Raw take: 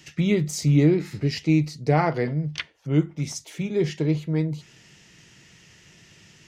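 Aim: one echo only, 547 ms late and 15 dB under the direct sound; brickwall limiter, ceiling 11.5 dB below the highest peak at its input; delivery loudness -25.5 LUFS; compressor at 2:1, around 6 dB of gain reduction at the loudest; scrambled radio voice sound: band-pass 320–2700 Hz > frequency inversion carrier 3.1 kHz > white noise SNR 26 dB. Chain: compression 2:1, threshold -25 dBFS; peak limiter -23.5 dBFS; band-pass 320–2700 Hz; delay 547 ms -15 dB; frequency inversion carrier 3.1 kHz; white noise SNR 26 dB; trim +10 dB

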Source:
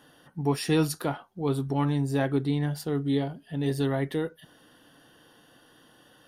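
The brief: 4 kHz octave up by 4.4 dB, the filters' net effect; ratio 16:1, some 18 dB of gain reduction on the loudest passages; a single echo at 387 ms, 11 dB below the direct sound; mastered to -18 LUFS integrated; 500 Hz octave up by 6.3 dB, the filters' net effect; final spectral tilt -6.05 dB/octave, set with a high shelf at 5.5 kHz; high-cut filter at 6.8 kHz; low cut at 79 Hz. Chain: high-pass 79 Hz; low-pass 6.8 kHz; peaking EQ 500 Hz +7.5 dB; peaking EQ 4 kHz +8.5 dB; treble shelf 5.5 kHz -7 dB; compression 16:1, threshold -33 dBFS; delay 387 ms -11 dB; trim +20.5 dB

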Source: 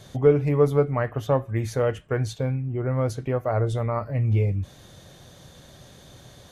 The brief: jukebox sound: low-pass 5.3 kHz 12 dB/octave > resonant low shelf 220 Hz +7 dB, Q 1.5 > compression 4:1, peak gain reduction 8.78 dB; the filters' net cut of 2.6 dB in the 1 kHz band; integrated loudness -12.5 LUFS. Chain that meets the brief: low-pass 5.3 kHz 12 dB/octave; resonant low shelf 220 Hz +7 dB, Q 1.5; peaking EQ 1 kHz -3 dB; compression 4:1, threshold -20 dBFS; trim +12 dB

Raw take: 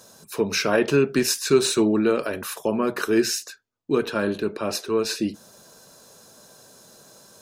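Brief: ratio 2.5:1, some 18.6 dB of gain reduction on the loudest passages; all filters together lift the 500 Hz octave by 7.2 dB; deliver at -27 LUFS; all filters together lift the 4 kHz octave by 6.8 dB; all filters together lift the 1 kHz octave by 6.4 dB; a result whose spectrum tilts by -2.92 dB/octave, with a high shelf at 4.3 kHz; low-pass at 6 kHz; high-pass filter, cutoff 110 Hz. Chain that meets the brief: high-pass 110 Hz; low-pass 6 kHz; peaking EQ 500 Hz +8 dB; peaking EQ 1 kHz +5.5 dB; peaking EQ 4 kHz +5.5 dB; treble shelf 4.3 kHz +6.5 dB; compression 2.5:1, threshold -37 dBFS; trim +7 dB

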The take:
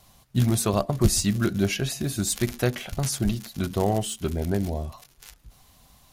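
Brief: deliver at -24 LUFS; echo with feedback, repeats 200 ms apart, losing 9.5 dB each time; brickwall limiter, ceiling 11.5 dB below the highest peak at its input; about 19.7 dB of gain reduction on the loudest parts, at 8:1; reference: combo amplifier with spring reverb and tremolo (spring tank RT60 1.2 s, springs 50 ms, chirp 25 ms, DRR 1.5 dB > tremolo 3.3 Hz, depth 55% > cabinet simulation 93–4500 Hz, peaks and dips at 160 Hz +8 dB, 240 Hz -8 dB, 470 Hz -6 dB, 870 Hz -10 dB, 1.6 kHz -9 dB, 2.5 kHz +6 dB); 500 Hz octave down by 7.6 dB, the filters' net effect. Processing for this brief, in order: peaking EQ 500 Hz -7 dB; compression 8:1, threshold -35 dBFS; peak limiter -32 dBFS; feedback delay 200 ms, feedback 33%, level -9.5 dB; spring tank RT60 1.2 s, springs 50 ms, chirp 25 ms, DRR 1.5 dB; tremolo 3.3 Hz, depth 55%; cabinet simulation 93–4500 Hz, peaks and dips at 160 Hz +8 dB, 240 Hz -8 dB, 470 Hz -6 dB, 870 Hz -10 dB, 1.6 kHz -9 dB, 2.5 kHz +6 dB; trim +18 dB

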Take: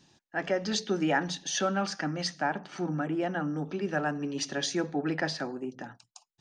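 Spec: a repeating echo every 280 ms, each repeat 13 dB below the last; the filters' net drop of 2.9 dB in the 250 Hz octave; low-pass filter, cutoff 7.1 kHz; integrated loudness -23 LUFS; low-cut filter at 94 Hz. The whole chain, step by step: high-pass 94 Hz; low-pass 7.1 kHz; peaking EQ 250 Hz -4 dB; feedback delay 280 ms, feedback 22%, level -13 dB; trim +9 dB

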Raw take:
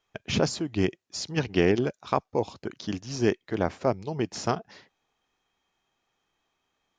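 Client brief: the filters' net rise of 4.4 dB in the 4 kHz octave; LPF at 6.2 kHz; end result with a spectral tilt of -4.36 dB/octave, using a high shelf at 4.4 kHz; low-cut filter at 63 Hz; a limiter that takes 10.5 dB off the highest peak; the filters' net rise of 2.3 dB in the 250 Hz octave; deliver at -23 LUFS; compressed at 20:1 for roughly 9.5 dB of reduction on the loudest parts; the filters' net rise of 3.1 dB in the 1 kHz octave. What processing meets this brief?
high-pass 63 Hz; low-pass 6.2 kHz; peaking EQ 250 Hz +3 dB; peaking EQ 1 kHz +3.5 dB; peaking EQ 4 kHz +5 dB; treble shelf 4.4 kHz +3 dB; compression 20:1, threshold -24 dBFS; trim +10.5 dB; peak limiter -9 dBFS

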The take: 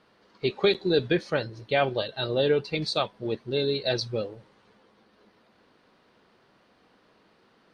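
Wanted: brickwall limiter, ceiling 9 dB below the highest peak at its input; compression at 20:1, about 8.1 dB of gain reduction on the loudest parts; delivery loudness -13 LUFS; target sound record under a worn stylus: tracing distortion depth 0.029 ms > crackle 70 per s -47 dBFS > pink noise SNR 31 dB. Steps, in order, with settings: compression 20:1, threshold -25 dBFS; peak limiter -23 dBFS; tracing distortion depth 0.029 ms; crackle 70 per s -47 dBFS; pink noise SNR 31 dB; trim +21.5 dB

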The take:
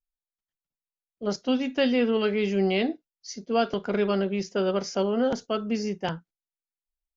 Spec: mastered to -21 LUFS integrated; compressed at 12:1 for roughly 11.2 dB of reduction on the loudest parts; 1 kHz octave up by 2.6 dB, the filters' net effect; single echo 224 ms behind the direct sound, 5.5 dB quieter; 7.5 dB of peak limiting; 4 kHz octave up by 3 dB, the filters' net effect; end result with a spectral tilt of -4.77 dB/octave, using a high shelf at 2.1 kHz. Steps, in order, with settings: peaking EQ 1 kHz +4.5 dB; treble shelf 2.1 kHz -3.5 dB; peaking EQ 4 kHz +8 dB; compression 12:1, threshold -28 dBFS; peak limiter -24.5 dBFS; delay 224 ms -5.5 dB; trim +13 dB

